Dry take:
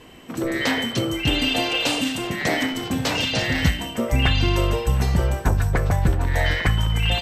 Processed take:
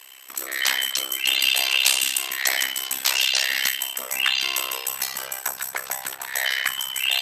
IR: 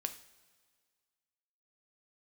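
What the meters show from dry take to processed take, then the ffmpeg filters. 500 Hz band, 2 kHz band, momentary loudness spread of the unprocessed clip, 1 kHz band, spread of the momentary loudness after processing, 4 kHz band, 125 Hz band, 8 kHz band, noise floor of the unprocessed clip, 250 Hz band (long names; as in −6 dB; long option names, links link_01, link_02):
−14.0 dB, +1.5 dB, 4 LU, −5.5 dB, 10 LU, +3.5 dB, below −35 dB, +10.0 dB, −35 dBFS, −25.5 dB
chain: -af "aemphasis=mode=production:type=75fm,tremolo=f=66:d=0.974,highpass=1100,volume=3.5dB"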